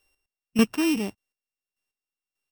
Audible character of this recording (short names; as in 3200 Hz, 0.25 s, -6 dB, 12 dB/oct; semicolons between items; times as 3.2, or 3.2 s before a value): a buzz of ramps at a fixed pitch in blocks of 16 samples; chopped level 1.7 Hz, depth 65%, duty 25%